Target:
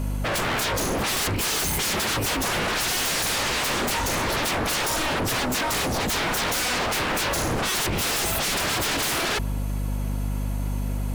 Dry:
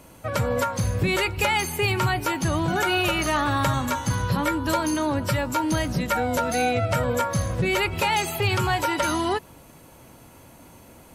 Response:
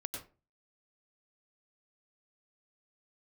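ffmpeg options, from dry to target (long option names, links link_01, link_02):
-af "acontrast=57,aeval=exprs='val(0)+0.0398*(sin(2*PI*50*n/s)+sin(2*PI*2*50*n/s)/2+sin(2*PI*3*50*n/s)/3+sin(2*PI*4*50*n/s)/4+sin(2*PI*5*50*n/s)/5)':channel_layout=same,aeval=exprs='0.0708*(abs(mod(val(0)/0.0708+3,4)-2)-1)':channel_layout=same,volume=3dB"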